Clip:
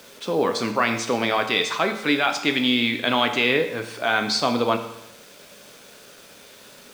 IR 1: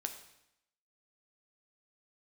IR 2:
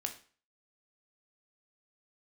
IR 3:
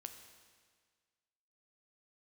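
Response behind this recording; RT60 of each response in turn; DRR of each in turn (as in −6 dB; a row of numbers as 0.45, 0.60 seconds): 1; 0.80, 0.40, 1.7 seconds; 5.5, 4.5, 6.0 decibels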